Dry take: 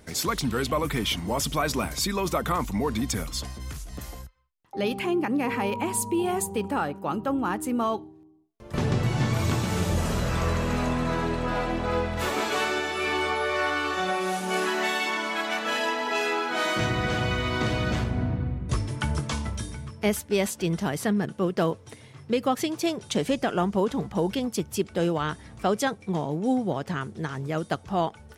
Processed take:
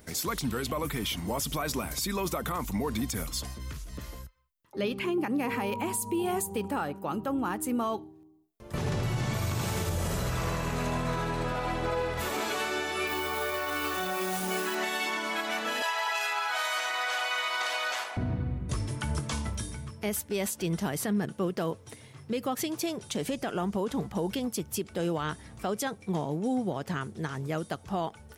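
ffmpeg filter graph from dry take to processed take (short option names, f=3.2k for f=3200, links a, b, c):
-filter_complex "[0:a]asettb=1/sr,asplit=3[a][b][c];[a]atrim=end=3.544[d];[b]atrim=start=3.54:end=5.18,asetpts=PTS-STARTPTS,afade=t=in:d=0.004:c=qsin,afade=t=out:st=1.636:d=0.004:c=qsin,asuperstop=centerf=760:order=4:qfactor=4.8,acrossover=split=5400[e][f];[f]acompressor=threshold=-56dB:ratio=4:attack=1:release=60[g];[e][g]amix=inputs=2:normalize=0[h];[c]atrim=start=5.176[i];[d][h]acrossfade=d=0.004:c1=hsin:c2=qsin[j];[j][i]acrossfade=d=0.004:c1=qsin:c2=hsin,asettb=1/sr,asplit=3[k][l][m];[k]atrim=end=8.784[n];[l]atrim=start=8.78:end=12.2,asetpts=PTS-STARTPTS,afade=t=in:d=0.004:c=qsin,afade=t=out:st=3.416:d=0.004:c=qsin,equalizer=f=260:t=o:w=0.39:g=-6,aecho=1:1:80:0.708,atrim=end_sample=150822[o];[m]atrim=start=12.196[p];[n][o]acrossfade=d=0.004:c1=hsin:c2=qsin[q];[q][p]acrossfade=d=0.004:c1=qsin:c2=hsin,asettb=1/sr,asplit=3[r][s][t];[r]atrim=end=13.074[u];[s]atrim=start=13.07:end=14.75,asetpts=PTS-STARTPTS,afade=t=in:d=0.004:c=qsin,afade=t=out:st=1.676:d=0.004:c=qsin,asplit=2[v][w];[w]adelay=37,volume=-13dB[x];[v][x]amix=inputs=2:normalize=0,atrim=end_sample=74088,acrusher=bits=7:dc=4:mix=0:aa=0.000001[y];[t]atrim=start=14.746[z];[u][y]acrossfade=d=0.004:c1=hsin:c2=qsin[aa];[aa][z]acrossfade=d=0.004:c1=qsin:c2=hsin,asettb=1/sr,asplit=3[ab][ac][ad];[ab]atrim=end=15.824[ae];[ac]atrim=start=15.82:end=18.17,asetpts=PTS-STARTPTS,afade=t=in:d=0.004:c=qsin,afade=t=out:st=2.346:d=0.004:c=qsin,highpass=f=720:w=0.5412,highpass=f=720:w=1.3066,acontrast=30[af];[ad]atrim=start=18.166[ag];[ae][af]acrossfade=d=0.004:c1=hsin:c2=qsin[ah];[ah][ag]acrossfade=d=0.004:c1=qsin:c2=hsin,highshelf=f=11k:g=12,alimiter=limit=-19dB:level=0:latency=1:release=84,volume=-2.5dB"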